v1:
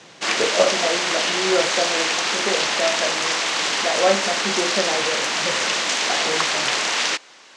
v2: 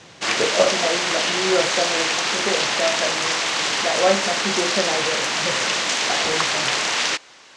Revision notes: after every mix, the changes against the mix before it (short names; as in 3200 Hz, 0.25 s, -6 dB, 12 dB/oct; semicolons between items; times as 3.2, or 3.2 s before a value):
master: remove HPF 170 Hz 12 dB/oct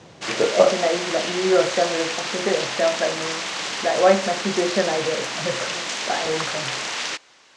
background -6.0 dB; reverb: on, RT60 0.35 s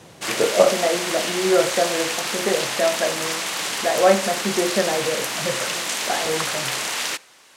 background: send on; master: remove LPF 6800 Hz 24 dB/oct